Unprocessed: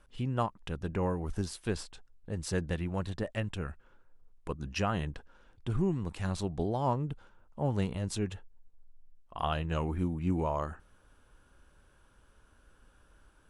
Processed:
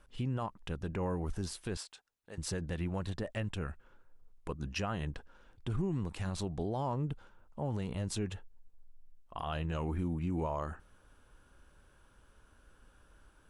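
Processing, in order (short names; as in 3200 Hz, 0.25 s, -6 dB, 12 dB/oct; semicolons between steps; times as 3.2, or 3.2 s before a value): 1.77–2.38 HPF 1100 Hz 6 dB/oct; limiter -26 dBFS, peak gain reduction 9.5 dB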